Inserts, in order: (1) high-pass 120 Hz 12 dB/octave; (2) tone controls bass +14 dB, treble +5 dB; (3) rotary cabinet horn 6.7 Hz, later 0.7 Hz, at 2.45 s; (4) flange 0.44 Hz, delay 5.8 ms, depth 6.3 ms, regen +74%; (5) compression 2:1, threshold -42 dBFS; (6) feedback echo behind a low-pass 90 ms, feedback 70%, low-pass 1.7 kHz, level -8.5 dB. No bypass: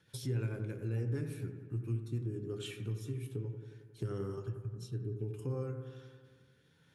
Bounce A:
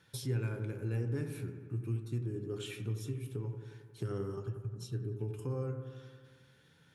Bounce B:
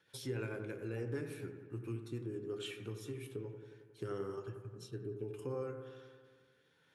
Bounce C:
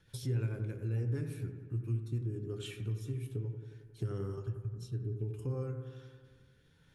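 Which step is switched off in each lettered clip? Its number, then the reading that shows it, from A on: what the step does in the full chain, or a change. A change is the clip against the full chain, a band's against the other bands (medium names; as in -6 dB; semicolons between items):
3, 8 kHz band +1.5 dB; 2, 125 Hz band -9.5 dB; 1, 125 Hz band +3.0 dB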